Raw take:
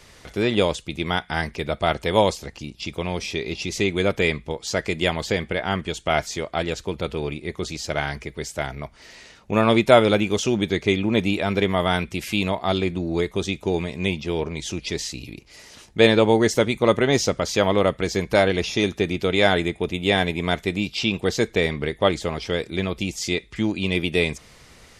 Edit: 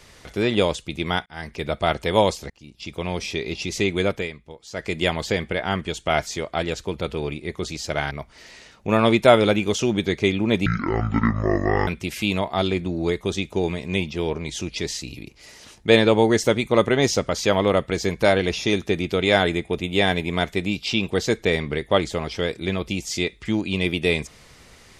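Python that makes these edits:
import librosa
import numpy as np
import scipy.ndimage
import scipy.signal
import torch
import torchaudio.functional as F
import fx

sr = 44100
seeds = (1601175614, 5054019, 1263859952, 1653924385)

y = fx.edit(x, sr, fx.fade_in_span(start_s=1.26, length_s=0.39),
    fx.fade_in_from(start_s=2.5, length_s=0.59, floor_db=-24.0),
    fx.fade_down_up(start_s=3.96, length_s=1.08, db=-12.5, fade_s=0.33, curve='qsin'),
    fx.cut(start_s=8.11, length_s=0.64),
    fx.speed_span(start_s=11.3, length_s=0.68, speed=0.56), tone=tone)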